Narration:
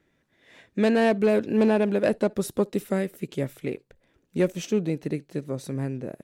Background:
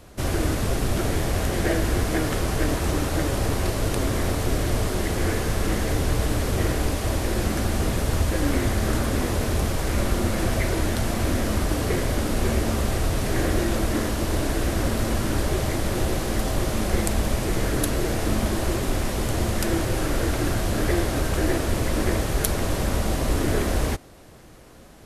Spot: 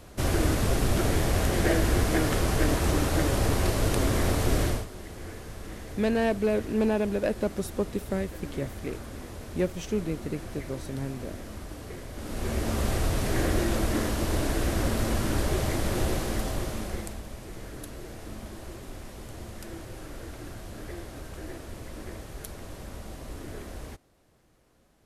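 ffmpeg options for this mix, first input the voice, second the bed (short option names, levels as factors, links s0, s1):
-filter_complex "[0:a]adelay=5200,volume=0.596[s0];[1:a]volume=4.22,afade=t=out:st=4.64:d=0.22:silence=0.16788,afade=t=in:st=12.13:d=0.74:silence=0.211349,afade=t=out:st=16.09:d=1.13:silence=0.199526[s1];[s0][s1]amix=inputs=2:normalize=0"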